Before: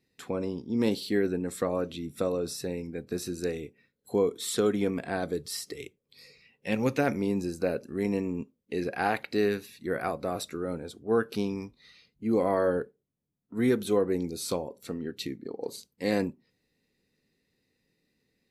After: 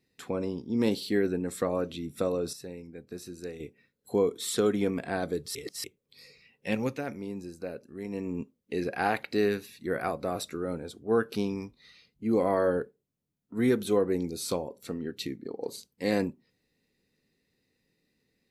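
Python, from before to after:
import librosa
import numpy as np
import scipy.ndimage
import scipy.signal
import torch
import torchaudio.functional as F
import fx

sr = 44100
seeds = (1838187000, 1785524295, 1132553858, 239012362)

y = fx.edit(x, sr, fx.clip_gain(start_s=2.53, length_s=1.07, db=-8.0),
    fx.reverse_span(start_s=5.55, length_s=0.29),
    fx.fade_down_up(start_s=6.7, length_s=1.69, db=-9.0, fade_s=0.3), tone=tone)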